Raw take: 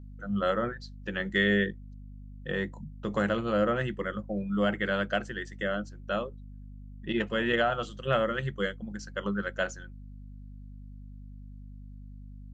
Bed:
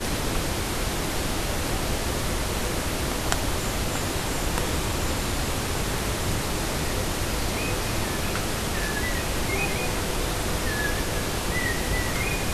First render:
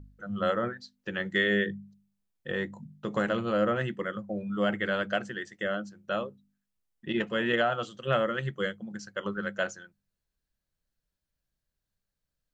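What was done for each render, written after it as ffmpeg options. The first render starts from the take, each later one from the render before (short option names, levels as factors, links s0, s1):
-af "bandreject=f=50:t=h:w=4,bandreject=f=100:t=h:w=4,bandreject=f=150:t=h:w=4,bandreject=f=200:t=h:w=4,bandreject=f=250:t=h:w=4"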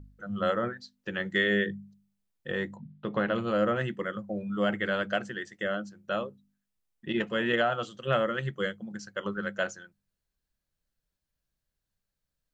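-filter_complex "[0:a]asplit=3[s0][s1][s2];[s0]afade=t=out:st=2.75:d=0.02[s3];[s1]lowpass=f=4000:w=0.5412,lowpass=f=4000:w=1.3066,afade=t=in:st=2.75:d=0.02,afade=t=out:st=3.34:d=0.02[s4];[s2]afade=t=in:st=3.34:d=0.02[s5];[s3][s4][s5]amix=inputs=3:normalize=0"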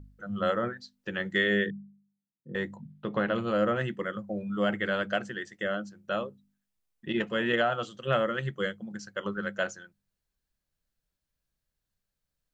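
-filter_complex "[0:a]asettb=1/sr,asplit=3[s0][s1][s2];[s0]atrim=end=1.704[s3];[s1]atrim=start=1.7:end=2.55,asetpts=PTS-STARTPTS,afade=t=in:d=0.004:c=qsin,afade=t=out:st=0.846:d=0.004:c=qsin,asuperpass=centerf=200:order=4:qfactor=1.2[s4];[s2]atrim=start=2.546[s5];[s3][s4]acrossfade=d=0.004:c1=hsin:c2=qsin[s6];[s6][s5]acrossfade=d=0.004:c1=qsin:c2=hsin"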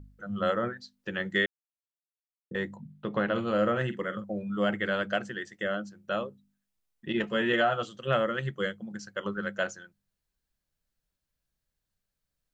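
-filter_complex "[0:a]asettb=1/sr,asplit=3[s0][s1][s2];[s0]atrim=end=3.274[s3];[s1]atrim=start=3.27:end=4.24,asetpts=PTS-STARTPTS,afade=t=in:d=0.004:c=qsin,afade=t=out:st=0.966:d=0.004:c=qsin,asplit=2[s4][s5];[s5]adelay=47,volume=0.251[s6];[s4][s6]amix=inputs=2:normalize=0,atrim=end_sample=42777[s7];[s2]atrim=start=4.236[s8];[s3][s7]acrossfade=d=0.004:c1=hsin:c2=qsin[s9];[s9][s8]acrossfade=d=0.004:c1=qsin:c2=hsin,asettb=1/sr,asplit=3[s10][s11][s12];[s10]atrim=end=7.224[s13];[s11]atrim=start=7.22:end=7.82,asetpts=PTS-STARTPTS,afade=t=in:d=0.004:c=qsin,afade=t=out:st=0.596:d=0.004:c=qsin,asplit=2[s14][s15];[s15]adelay=14,volume=0.447[s16];[s14][s16]amix=inputs=2:normalize=0,atrim=end_sample=26460[s17];[s12]atrim=start=7.816[s18];[s13][s17]acrossfade=d=0.004:c1=hsin:c2=qsin[s19];[s19][s18]acrossfade=d=0.004:c1=qsin:c2=hsin,asplit=3[s20][s21][s22];[s20]atrim=end=1.46,asetpts=PTS-STARTPTS,afade=t=out:st=1.456:d=0.004:c=hsin[s23];[s21]atrim=start=1.46:end=2.51,asetpts=PTS-STARTPTS,volume=0[s24];[s22]atrim=start=2.51,asetpts=PTS-STARTPTS,afade=t=in:d=0.004:c=hsin[s25];[s23][s24][s25]concat=n=3:v=0:a=1"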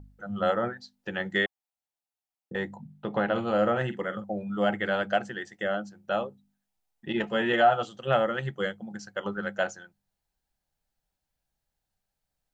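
-af "equalizer=f=790:t=o:w=0.45:g=11.5,bandreject=f=1100:w=16"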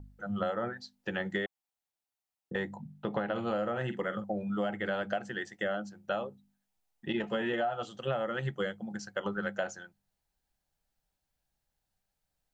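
-filter_complex "[0:a]acrossover=split=1000[s0][s1];[s1]alimiter=limit=0.0668:level=0:latency=1:release=67[s2];[s0][s2]amix=inputs=2:normalize=0,acompressor=threshold=0.0398:ratio=12"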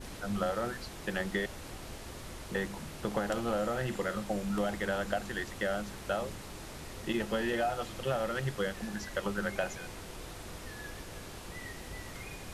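-filter_complex "[1:a]volume=0.126[s0];[0:a][s0]amix=inputs=2:normalize=0"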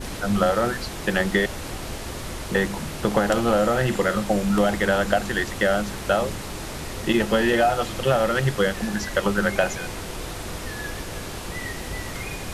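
-af "volume=3.98"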